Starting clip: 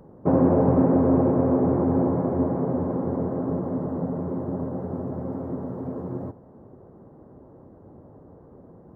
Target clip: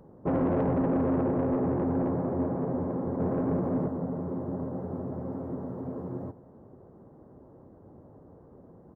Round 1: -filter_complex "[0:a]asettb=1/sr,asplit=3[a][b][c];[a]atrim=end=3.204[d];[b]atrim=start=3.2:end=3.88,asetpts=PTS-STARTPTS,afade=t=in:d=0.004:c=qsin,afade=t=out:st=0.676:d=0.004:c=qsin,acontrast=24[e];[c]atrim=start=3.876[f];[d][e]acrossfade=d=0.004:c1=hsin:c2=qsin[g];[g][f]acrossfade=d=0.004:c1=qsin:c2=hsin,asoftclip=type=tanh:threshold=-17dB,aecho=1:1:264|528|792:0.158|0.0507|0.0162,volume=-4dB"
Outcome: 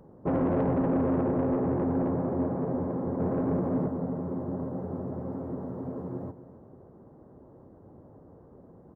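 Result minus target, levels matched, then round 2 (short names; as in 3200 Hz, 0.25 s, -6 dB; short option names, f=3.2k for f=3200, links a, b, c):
echo-to-direct +11 dB
-filter_complex "[0:a]asettb=1/sr,asplit=3[a][b][c];[a]atrim=end=3.204[d];[b]atrim=start=3.2:end=3.88,asetpts=PTS-STARTPTS,afade=t=in:d=0.004:c=qsin,afade=t=out:st=0.676:d=0.004:c=qsin,acontrast=24[e];[c]atrim=start=3.876[f];[d][e]acrossfade=d=0.004:c1=hsin:c2=qsin[g];[g][f]acrossfade=d=0.004:c1=qsin:c2=hsin,asoftclip=type=tanh:threshold=-17dB,aecho=1:1:264|528:0.0447|0.0143,volume=-4dB"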